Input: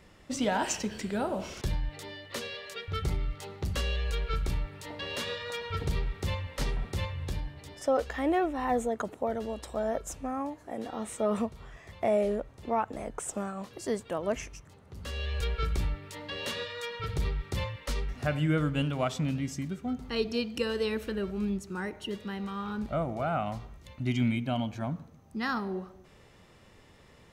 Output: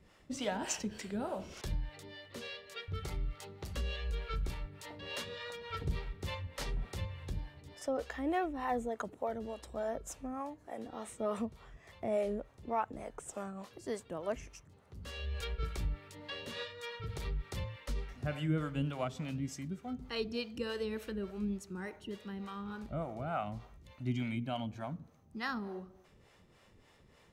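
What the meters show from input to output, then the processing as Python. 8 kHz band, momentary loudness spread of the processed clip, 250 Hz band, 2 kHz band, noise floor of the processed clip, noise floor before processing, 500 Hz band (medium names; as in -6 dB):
-6.0 dB, 10 LU, -7.0 dB, -6.5 dB, -64 dBFS, -57 dBFS, -7.0 dB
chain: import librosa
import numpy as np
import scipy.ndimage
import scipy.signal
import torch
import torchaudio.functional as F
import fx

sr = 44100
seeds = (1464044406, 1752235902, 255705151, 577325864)

y = fx.harmonic_tremolo(x, sr, hz=3.4, depth_pct=70, crossover_hz=420.0)
y = y * 10.0 ** (-3.5 / 20.0)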